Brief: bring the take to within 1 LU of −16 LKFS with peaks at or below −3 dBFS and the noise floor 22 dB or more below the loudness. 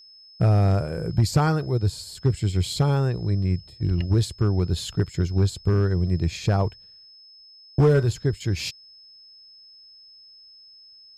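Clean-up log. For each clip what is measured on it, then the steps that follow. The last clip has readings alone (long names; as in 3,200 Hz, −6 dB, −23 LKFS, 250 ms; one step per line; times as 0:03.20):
share of clipped samples 0.5%; peaks flattened at −11.5 dBFS; interfering tone 5,200 Hz; level of the tone −47 dBFS; integrated loudness −23.5 LKFS; sample peak −11.5 dBFS; target loudness −16.0 LKFS
→ clipped peaks rebuilt −11.5 dBFS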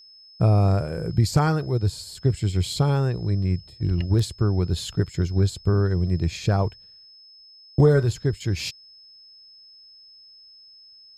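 share of clipped samples 0.0%; interfering tone 5,200 Hz; level of the tone −47 dBFS
→ notch filter 5,200 Hz, Q 30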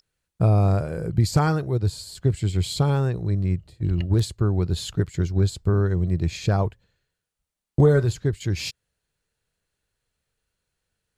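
interfering tone none found; integrated loudness −23.5 LKFS; sample peak −6.0 dBFS; target loudness −16.0 LKFS
→ level +7.5 dB
brickwall limiter −3 dBFS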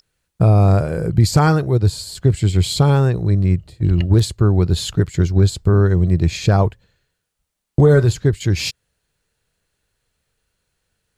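integrated loudness −16.5 LKFS; sample peak −3.0 dBFS; background noise floor −76 dBFS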